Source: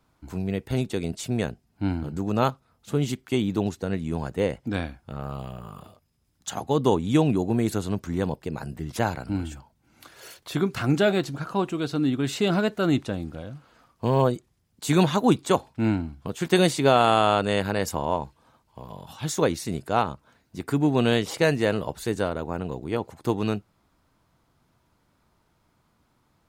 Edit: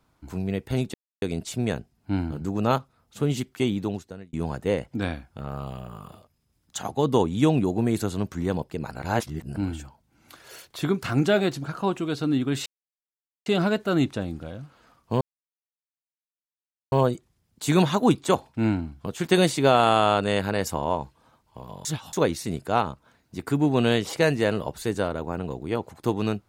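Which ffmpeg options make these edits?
ffmpeg -i in.wav -filter_complex "[0:a]asplit=9[link_01][link_02][link_03][link_04][link_05][link_06][link_07][link_08][link_09];[link_01]atrim=end=0.94,asetpts=PTS-STARTPTS,afade=type=out:start_time=0.936:duration=0.004:curve=hsin,apad=pad_dur=0.28[link_10];[link_02]atrim=start=0.94:end=4.05,asetpts=PTS-STARTPTS,afade=type=in:duration=0.004:curve=hsin,afade=type=out:start_time=2.44:duration=0.67[link_11];[link_03]atrim=start=4.05:end=8.632,asetpts=PTS-STARTPTS,afade=type=in:duration=0.004:curve=hsin[link_12];[link_04]atrim=start=8.628:end=9.282,asetpts=PTS-STARTPTS,areverse[link_13];[link_05]atrim=start=9.278:end=12.38,asetpts=PTS-STARTPTS,afade=type=out:start_time=3.098:duration=0.004:curve=hsin,apad=pad_dur=0.8[link_14];[link_06]atrim=start=12.38:end=14.13,asetpts=PTS-STARTPTS,afade=type=in:duration=0.004:curve=hsin,afade=type=out:start_time=1.746:duration=0.004:curve=hsin,apad=pad_dur=1.71[link_15];[link_07]atrim=start=14.13:end=19.062,asetpts=PTS-STARTPTS,afade=type=in:duration=0.004:curve=hsin[link_16];[link_08]atrim=start=19.058:end=19.342,asetpts=PTS-STARTPTS,areverse[link_17];[link_09]atrim=start=19.338[link_18];[link_10][link_11][link_12]concat=n=3:v=0:a=1[link_19];[link_19][link_13]acrossfade=duration=0.004:curve1=hsin:curve2=hsin[link_20];[link_14][link_15][link_16]concat=n=3:v=0:a=1[link_21];[link_20][link_21]acrossfade=duration=0.004:curve1=hsin:curve2=hsin[link_22];[link_22][link_17]acrossfade=duration=0.004:curve1=hsin:curve2=hsin[link_23];[link_23][link_18]acrossfade=duration=0.004:curve1=hsin:curve2=hsin" out.wav

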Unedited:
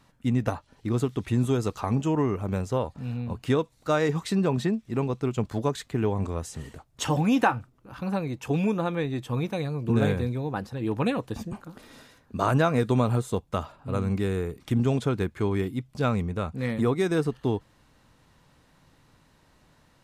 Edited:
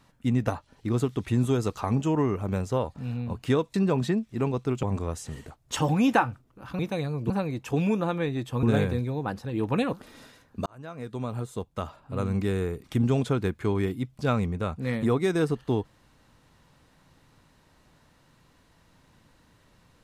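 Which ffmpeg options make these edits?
ffmpeg -i in.wav -filter_complex "[0:a]asplit=8[link_01][link_02][link_03][link_04][link_05][link_06][link_07][link_08];[link_01]atrim=end=3.742[link_09];[link_02]atrim=start=4.298:end=5.392[link_10];[link_03]atrim=start=6.108:end=8.072[link_11];[link_04]atrim=start=9.398:end=9.912[link_12];[link_05]atrim=start=8.068:end=9.402[link_13];[link_06]atrim=start=9.908:end=11.212[link_14];[link_07]atrim=start=11.688:end=12.42,asetpts=PTS-STARTPTS,afade=type=out:start_time=0.728:duration=0.004:curve=hsin[link_15];[link_08]atrim=start=12.42,asetpts=PTS-STARTPTS,afade=type=in:duration=1.79[link_16];[link_09][link_10]acrossfade=duration=0.004:curve1=hsin:curve2=hsin[link_17];[link_17][link_11]acrossfade=duration=0.004:curve1=hsin:curve2=hsin[link_18];[link_18][link_12]acrossfade=duration=0.004:curve1=hsin:curve2=hsin[link_19];[link_19][link_13]acrossfade=duration=0.004:curve1=hsin:curve2=hsin[link_20];[link_20][link_14]acrossfade=duration=0.004:curve1=hsin:curve2=hsin[link_21];[link_15][link_16]concat=n=2:v=0:a=1[link_22];[link_21][link_22]acrossfade=duration=0.004:curve1=hsin:curve2=hsin" out.wav

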